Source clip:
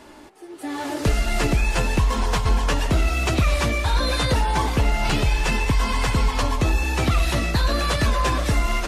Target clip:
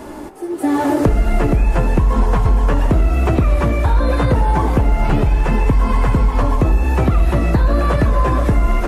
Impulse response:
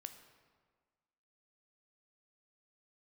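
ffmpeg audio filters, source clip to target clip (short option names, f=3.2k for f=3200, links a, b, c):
-filter_complex "[0:a]acrossover=split=2900[a][b];[b]acompressor=threshold=-42dB:ratio=4:attack=1:release=60[c];[a][c]amix=inputs=2:normalize=0,equalizer=f=3.6k:w=0.45:g=-12,acompressor=threshold=-27dB:ratio=6,asplit=2[d][e];[1:a]atrim=start_sample=2205[f];[e][f]afir=irnorm=-1:irlink=0,volume=9.5dB[g];[d][g]amix=inputs=2:normalize=0,volume=7dB"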